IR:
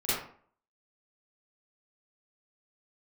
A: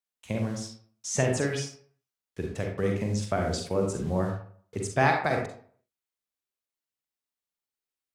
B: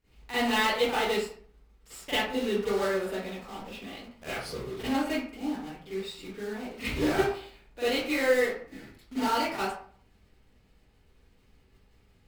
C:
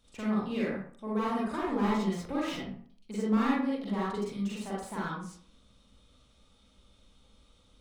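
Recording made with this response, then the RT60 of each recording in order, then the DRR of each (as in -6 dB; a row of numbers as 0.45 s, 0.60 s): B; 0.50 s, 0.50 s, 0.50 s; 1.5 dB, -14.0 dB, -7.0 dB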